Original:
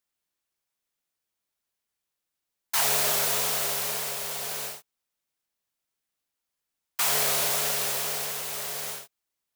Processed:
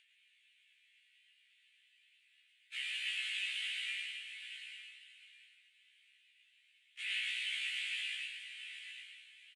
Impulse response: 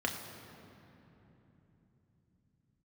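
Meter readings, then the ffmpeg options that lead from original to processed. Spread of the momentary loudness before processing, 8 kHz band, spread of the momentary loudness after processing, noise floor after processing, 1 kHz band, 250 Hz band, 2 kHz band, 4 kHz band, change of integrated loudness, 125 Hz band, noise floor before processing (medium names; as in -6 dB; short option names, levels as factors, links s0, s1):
12 LU, -26.5 dB, 17 LU, -71 dBFS, under -35 dB, under -40 dB, -4.5 dB, -7.0 dB, -13.5 dB, under -40 dB, -85 dBFS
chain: -af "agate=range=0.0178:threshold=0.0447:ratio=16:detection=peak,asuperpass=centerf=4400:order=12:qfactor=0.59,equalizer=f=5700:t=o:w=0.77:g=-3,aecho=1:1:4.6:0.5,acompressor=mode=upward:threshold=0.01:ratio=2.5,alimiter=level_in=3.98:limit=0.0631:level=0:latency=1:release=122,volume=0.251,highshelf=f=4000:t=q:w=3:g=-12,aphaser=in_gain=1:out_gain=1:delay=3.6:decay=0.31:speed=0.42:type=sinusoidal,aecho=1:1:110|275|522.5|893.8|1451:0.631|0.398|0.251|0.158|0.1,afftfilt=real='re*1.73*eq(mod(b,3),0)':imag='im*1.73*eq(mod(b,3),0)':win_size=2048:overlap=0.75,volume=2"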